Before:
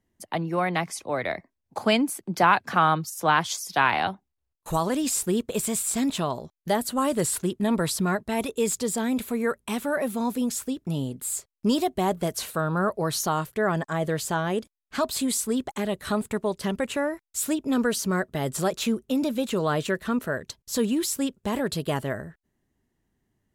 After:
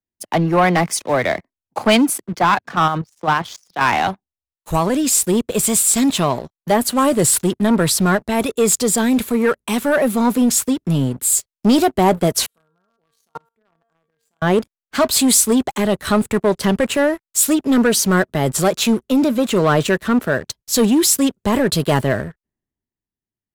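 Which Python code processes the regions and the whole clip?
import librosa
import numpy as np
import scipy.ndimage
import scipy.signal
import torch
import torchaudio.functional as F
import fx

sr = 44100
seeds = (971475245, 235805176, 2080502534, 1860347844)

y = fx.chain(x, sr, fx.air_absorb(metres=88.0),
    fx.level_steps(step_db=10), at=(2.26, 3.81))
y = fx.chain(y, sr, fx.high_shelf(hz=2000.0, db=-6.0),
    fx.comb_fb(f0_hz=230.0, decay_s=0.43, harmonics='all', damping=0.0, mix_pct=90),
    fx.level_steps(step_db=18), at=(12.46, 14.42))
y = fx.rider(y, sr, range_db=3, speed_s=2.0)
y = fx.leveller(y, sr, passes=3)
y = fx.band_widen(y, sr, depth_pct=40)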